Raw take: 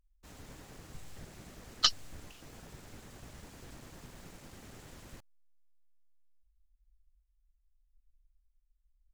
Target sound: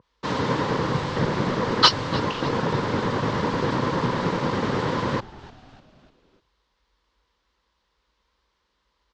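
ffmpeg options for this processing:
-filter_complex "[0:a]volume=16.8,asoftclip=hard,volume=0.0596,apsyclip=50.1,highpass=f=110:w=0.5412,highpass=f=110:w=1.3066,equalizer=f=490:t=q:w=4:g=7,equalizer=f=700:t=q:w=4:g=-7,equalizer=f=1000:t=q:w=4:g=10,equalizer=f=2500:t=q:w=4:g=-5,lowpass=f=4600:w=0.5412,lowpass=f=4600:w=1.3066,asplit=2[s0][s1];[s1]asplit=4[s2][s3][s4][s5];[s2]adelay=299,afreqshift=-130,volume=0.112[s6];[s3]adelay=598,afreqshift=-260,volume=0.0562[s7];[s4]adelay=897,afreqshift=-390,volume=0.0282[s8];[s5]adelay=1196,afreqshift=-520,volume=0.014[s9];[s6][s7][s8][s9]amix=inputs=4:normalize=0[s10];[s0][s10]amix=inputs=2:normalize=0,adynamicequalizer=threshold=0.0126:dfrequency=2100:dqfactor=0.7:tfrequency=2100:tqfactor=0.7:attack=5:release=100:ratio=0.375:range=2:mode=cutabove:tftype=highshelf,volume=0.531"

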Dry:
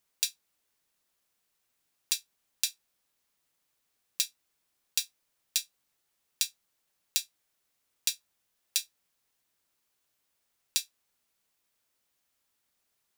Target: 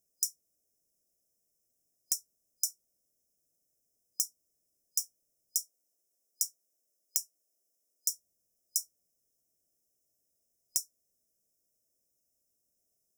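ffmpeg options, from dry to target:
-filter_complex "[0:a]asettb=1/sr,asplit=3[s0][s1][s2];[s0]atrim=end=5.584[s3];[s1]atrim=start=5.58:end=8.12,asetpts=PTS-STARTPTS,afade=t=in:d=0.004:c=qsin,afade=t=out:st=2.536:d=0.004:c=qsin,highpass=300[s4];[s2]atrim=start=8.116[s5];[s3][s4]acrossfade=d=0.004:c1=hsin:c2=qsin[s6];[s6][s5]acrossfade=d=0.004:c1=qsin:c2=hsin,afftfilt=real='re*(1-between(b*sr/4096,720,5000))':imag='im*(1-between(b*sr/4096,720,5000))':win_size=4096:overlap=0.75"

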